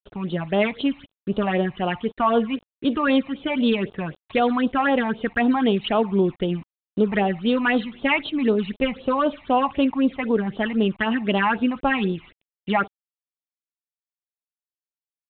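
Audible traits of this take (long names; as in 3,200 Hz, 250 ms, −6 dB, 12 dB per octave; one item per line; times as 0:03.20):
a quantiser's noise floor 8 bits, dither none
phaser sweep stages 8, 3.9 Hz, lowest notch 430–2,000 Hz
G.726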